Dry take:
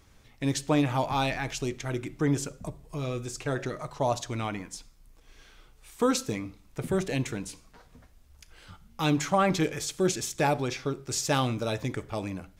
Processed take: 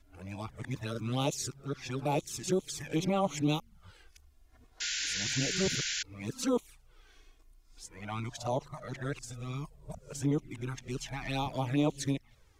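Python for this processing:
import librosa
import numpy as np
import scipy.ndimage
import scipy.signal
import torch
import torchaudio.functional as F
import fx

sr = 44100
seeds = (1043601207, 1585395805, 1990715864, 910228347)

y = np.flip(x).copy()
y = fx.env_flanger(y, sr, rest_ms=3.1, full_db=-22.5)
y = fx.spec_paint(y, sr, seeds[0], shape='noise', start_s=4.8, length_s=1.23, low_hz=1400.0, high_hz=7400.0, level_db=-31.0)
y = y * 10.0 ** (-3.5 / 20.0)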